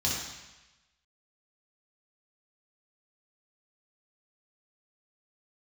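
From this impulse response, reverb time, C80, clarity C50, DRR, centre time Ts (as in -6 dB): 1.0 s, 3.0 dB, 0.0 dB, -6.0 dB, 69 ms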